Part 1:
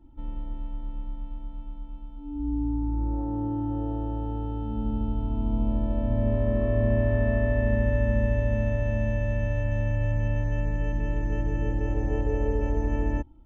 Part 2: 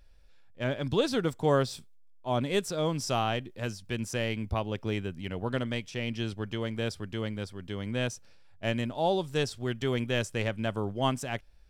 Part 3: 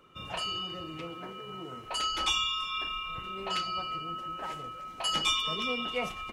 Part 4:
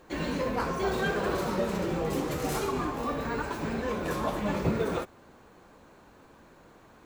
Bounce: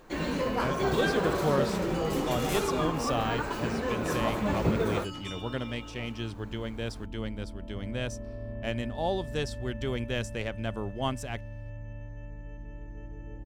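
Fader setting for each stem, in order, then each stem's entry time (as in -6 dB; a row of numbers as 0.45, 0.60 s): -15.5, -3.0, -15.0, +0.5 dB; 1.65, 0.00, 0.00, 0.00 s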